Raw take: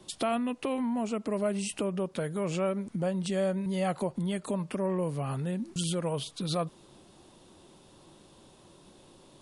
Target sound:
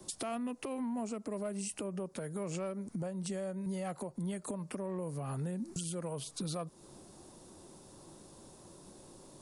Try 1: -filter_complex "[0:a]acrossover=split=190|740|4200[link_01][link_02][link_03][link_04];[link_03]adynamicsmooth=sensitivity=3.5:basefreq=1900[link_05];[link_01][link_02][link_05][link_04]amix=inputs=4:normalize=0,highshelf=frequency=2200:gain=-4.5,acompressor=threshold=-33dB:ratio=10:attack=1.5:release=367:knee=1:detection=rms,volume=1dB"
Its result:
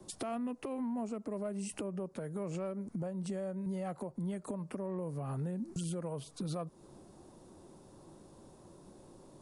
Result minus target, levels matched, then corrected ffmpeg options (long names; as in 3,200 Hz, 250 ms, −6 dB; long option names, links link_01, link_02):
4,000 Hz band −4.5 dB
-filter_complex "[0:a]acrossover=split=190|740|4200[link_01][link_02][link_03][link_04];[link_03]adynamicsmooth=sensitivity=3.5:basefreq=1900[link_05];[link_01][link_02][link_05][link_04]amix=inputs=4:normalize=0,highshelf=frequency=2200:gain=5.5,acompressor=threshold=-33dB:ratio=10:attack=1.5:release=367:knee=1:detection=rms,volume=1dB"